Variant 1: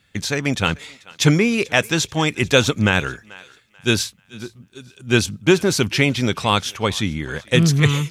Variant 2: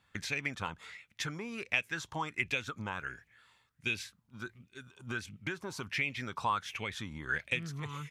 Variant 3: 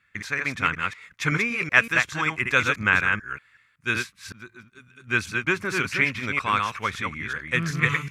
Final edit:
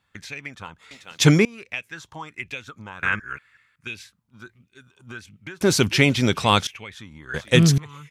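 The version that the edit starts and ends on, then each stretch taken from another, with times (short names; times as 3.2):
2
0.91–1.45 from 1
3.03–3.87 from 3
5.61–6.67 from 1
7.34–7.78 from 1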